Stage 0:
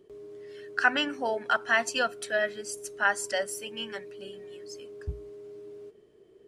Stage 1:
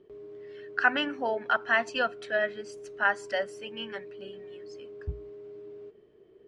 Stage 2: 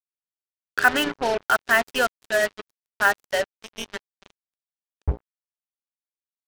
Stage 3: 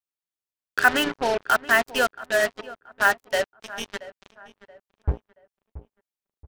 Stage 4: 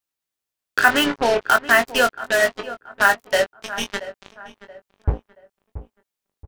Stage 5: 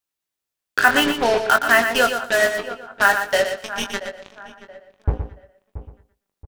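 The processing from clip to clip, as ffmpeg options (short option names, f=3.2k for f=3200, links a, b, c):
-af "lowpass=3.2k"
-af "lowshelf=f=77:g=11,acrusher=bits=4:mix=0:aa=0.5,volume=5.5dB"
-filter_complex "[0:a]asplit=2[a][b];[b]adelay=678,lowpass=f=1.8k:p=1,volume=-16.5dB,asplit=2[c][d];[d]adelay=678,lowpass=f=1.8k:p=1,volume=0.39,asplit=2[e][f];[f]adelay=678,lowpass=f=1.8k:p=1,volume=0.39[g];[a][c][e][g]amix=inputs=4:normalize=0"
-filter_complex "[0:a]asplit=2[a][b];[b]acompressor=threshold=-26dB:ratio=6,volume=-0.5dB[c];[a][c]amix=inputs=2:normalize=0,asplit=2[d][e];[e]adelay=21,volume=-7dB[f];[d][f]amix=inputs=2:normalize=0,volume=1dB"
-af "aecho=1:1:119|238|357:0.398|0.0717|0.0129"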